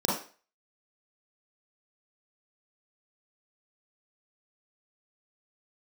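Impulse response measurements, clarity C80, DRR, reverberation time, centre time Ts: 9.5 dB, -6.0 dB, 0.40 s, 46 ms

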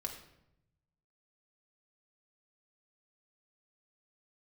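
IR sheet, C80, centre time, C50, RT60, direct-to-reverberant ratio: 10.0 dB, 21 ms, 7.5 dB, 0.80 s, 1.0 dB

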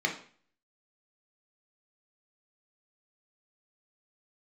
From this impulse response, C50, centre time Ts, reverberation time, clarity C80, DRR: 9.0 dB, 18 ms, 0.45 s, 14.0 dB, 0.5 dB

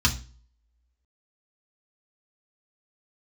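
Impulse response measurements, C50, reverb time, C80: 15.5 dB, 0.35 s, 21.5 dB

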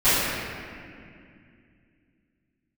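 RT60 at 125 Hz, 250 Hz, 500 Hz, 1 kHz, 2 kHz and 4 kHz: 3.4, 3.5, 2.5, 2.1, 2.4, 1.7 s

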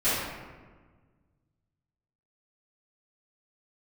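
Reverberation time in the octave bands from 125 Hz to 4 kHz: 2.4, 2.0, 1.5, 1.4, 1.2, 0.80 s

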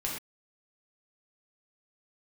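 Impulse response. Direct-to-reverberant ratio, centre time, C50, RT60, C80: -3.5 dB, 41 ms, 2.5 dB, not exponential, 6.0 dB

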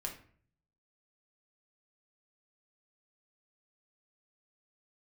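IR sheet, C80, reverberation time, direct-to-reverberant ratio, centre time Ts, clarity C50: 13.5 dB, 0.50 s, 0.0 dB, 19 ms, 9.0 dB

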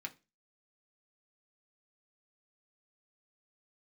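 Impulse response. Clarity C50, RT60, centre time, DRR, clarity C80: 19.5 dB, not exponential, 5 ms, 1.5 dB, 26.5 dB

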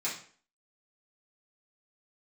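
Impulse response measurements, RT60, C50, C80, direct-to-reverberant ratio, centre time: 0.45 s, 6.0 dB, 11.0 dB, -9.0 dB, 30 ms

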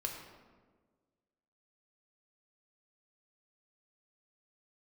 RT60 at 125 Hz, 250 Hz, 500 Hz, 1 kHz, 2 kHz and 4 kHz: 1.7, 1.7, 1.7, 1.3, 1.1, 0.80 s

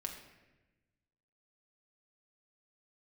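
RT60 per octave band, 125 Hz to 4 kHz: 1.7, 1.5, 1.2, 0.95, 1.1, 0.80 s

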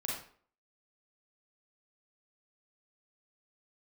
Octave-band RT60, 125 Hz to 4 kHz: 0.45, 0.50, 0.50, 0.50, 0.45, 0.35 s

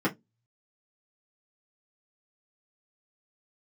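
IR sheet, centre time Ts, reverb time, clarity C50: 11 ms, 0.15 s, 21.0 dB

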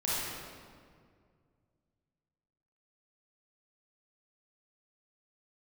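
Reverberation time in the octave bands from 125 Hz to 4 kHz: 3.0, 2.5, 2.2, 1.9, 1.6, 1.3 s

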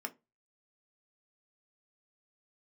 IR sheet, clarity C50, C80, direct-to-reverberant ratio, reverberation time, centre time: 21.5 dB, 29.5 dB, 4.5 dB, 0.25 s, 5 ms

